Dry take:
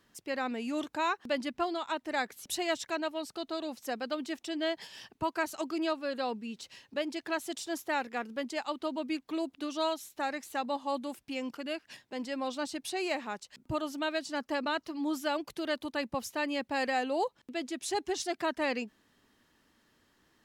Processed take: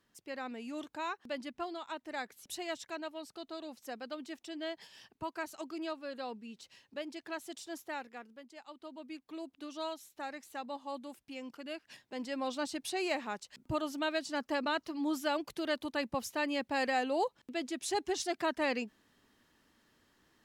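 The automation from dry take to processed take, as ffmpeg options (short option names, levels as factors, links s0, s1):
-af "volume=3.16,afade=t=out:st=7.82:d=0.63:silence=0.281838,afade=t=in:st=8.45:d=1.29:silence=0.298538,afade=t=in:st=11.48:d=1.04:silence=0.446684"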